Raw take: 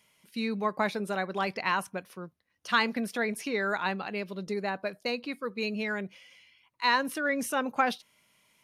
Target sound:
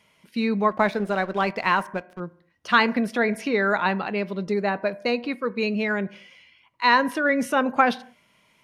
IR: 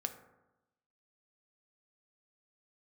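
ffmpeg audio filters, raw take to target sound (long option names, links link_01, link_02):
-filter_complex "[0:a]asettb=1/sr,asplit=3[link_01][link_02][link_03];[link_01]atrim=end=0.714[link_04];[link_02]atrim=start=0.71:end=2.2,asetpts=PTS-STARTPTS,afade=type=in:duration=0.004:curve=qsin,afade=type=out:start_time=1.486:duration=0.004:curve=qsin,aeval=exprs='sgn(val(0))*max(abs(val(0))-0.00398,0)':channel_layout=same[link_05];[link_03]atrim=start=2.196[link_06];[link_04][link_05]acrossfade=duration=0.004:curve1=hsin:curve2=qsin[link_07];[link_07][link_06]acrossfade=duration=0.004:curve1=qsin:curve2=hsin,lowpass=frequency=2600:poles=1,asplit=2[link_08][link_09];[1:a]atrim=start_sample=2205,afade=type=out:start_time=0.37:duration=0.01,atrim=end_sample=16758,asetrate=57330,aresample=44100[link_10];[link_09][link_10]afir=irnorm=-1:irlink=0,volume=-5dB[link_11];[link_08][link_11]amix=inputs=2:normalize=0,volume=5.5dB"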